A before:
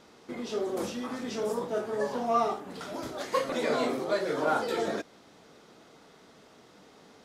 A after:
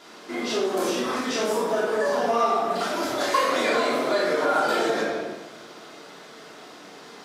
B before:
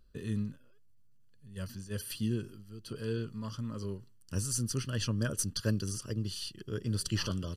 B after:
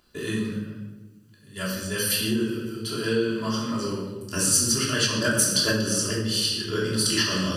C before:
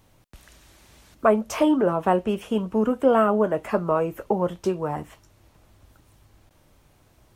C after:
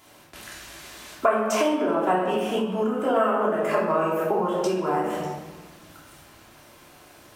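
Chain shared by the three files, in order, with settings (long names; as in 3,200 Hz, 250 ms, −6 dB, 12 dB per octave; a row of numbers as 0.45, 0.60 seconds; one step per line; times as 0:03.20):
rectangular room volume 650 cubic metres, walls mixed, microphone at 3.1 metres
downward compressor 5 to 1, threshold −23 dBFS
high-pass filter 640 Hz 6 dB per octave
loudness normalisation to −24 LKFS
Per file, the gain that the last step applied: +7.5, +12.0, +7.0 decibels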